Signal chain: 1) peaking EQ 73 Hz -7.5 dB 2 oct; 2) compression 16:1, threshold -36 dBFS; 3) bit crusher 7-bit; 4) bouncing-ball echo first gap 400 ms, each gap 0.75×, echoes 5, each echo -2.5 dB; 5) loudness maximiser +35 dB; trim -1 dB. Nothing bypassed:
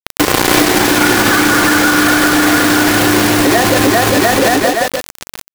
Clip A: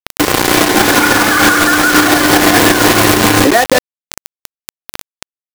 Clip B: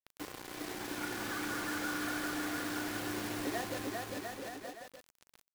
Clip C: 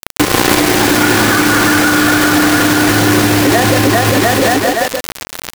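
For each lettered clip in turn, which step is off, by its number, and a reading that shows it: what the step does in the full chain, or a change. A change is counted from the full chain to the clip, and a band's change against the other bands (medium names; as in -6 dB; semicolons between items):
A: 4, 250 Hz band -1.5 dB; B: 5, crest factor change +5.5 dB; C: 1, 125 Hz band +4.5 dB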